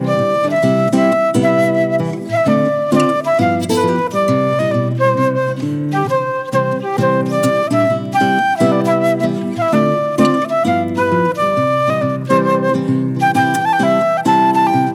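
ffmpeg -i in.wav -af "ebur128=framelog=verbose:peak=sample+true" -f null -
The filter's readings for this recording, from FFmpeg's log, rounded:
Integrated loudness:
  I:         -14.8 LUFS
  Threshold: -24.8 LUFS
Loudness range:
  LRA:         1.8 LU
  Threshold: -35.0 LUFS
  LRA low:   -16.1 LUFS
  LRA high:  -14.3 LUFS
Sample peak:
  Peak:       -1.4 dBFS
True peak:
  Peak:       -1.4 dBFS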